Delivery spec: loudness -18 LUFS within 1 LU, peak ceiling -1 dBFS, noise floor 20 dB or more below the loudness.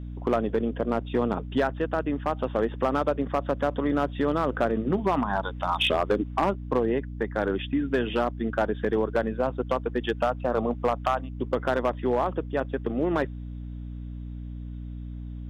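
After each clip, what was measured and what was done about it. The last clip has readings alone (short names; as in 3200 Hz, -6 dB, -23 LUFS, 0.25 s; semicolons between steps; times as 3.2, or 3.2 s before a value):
clipped 0.7%; flat tops at -16.0 dBFS; hum 60 Hz; harmonics up to 300 Hz; hum level -34 dBFS; loudness -27.0 LUFS; peak -16.0 dBFS; loudness target -18.0 LUFS
-> clip repair -16 dBFS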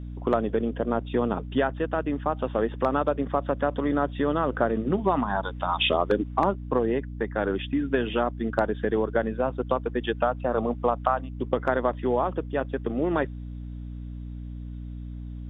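clipped 0.0%; hum 60 Hz; harmonics up to 300 Hz; hum level -34 dBFS
-> de-hum 60 Hz, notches 5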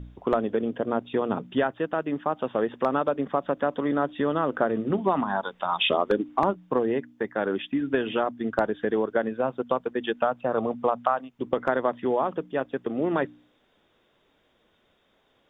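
hum none; loudness -27.0 LUFS; peak -7.0 dBFS; loudness target -18.0 LUFS
-> gain +9 dB; limiter -1 dBFS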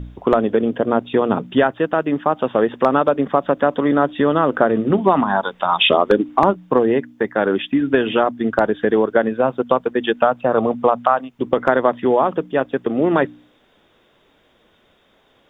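loudness -18.0 LUFS; peak -1.0 dBFS; noise floor -58 dBFS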